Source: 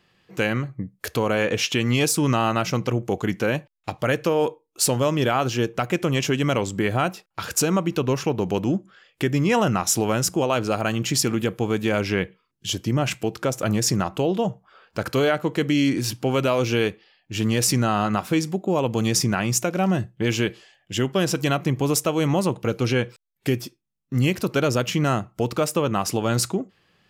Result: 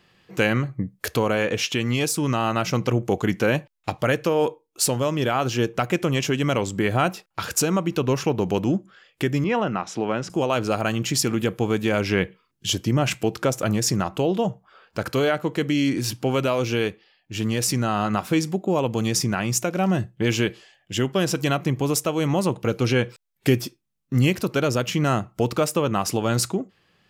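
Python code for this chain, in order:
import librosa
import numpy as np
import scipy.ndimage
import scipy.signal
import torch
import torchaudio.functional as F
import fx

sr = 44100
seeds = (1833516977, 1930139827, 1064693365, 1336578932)

y = fx.rider(x, sr, range_db=4, speed_s=0.5)
y = fx.bandpass_edges(y, sr, low_hz=160.0, high_hz=3000.0, at=(9.44, 10.3))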